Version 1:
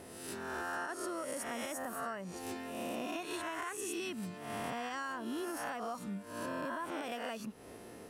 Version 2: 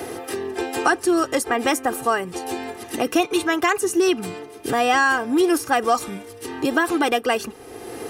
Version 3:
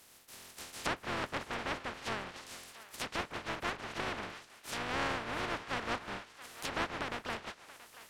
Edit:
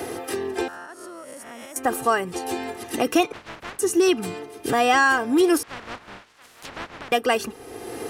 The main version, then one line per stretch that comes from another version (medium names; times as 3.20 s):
2
0.68–1.76 s: from 1
3.32–3.79 s: from 3
5.63–7.12 s: from 3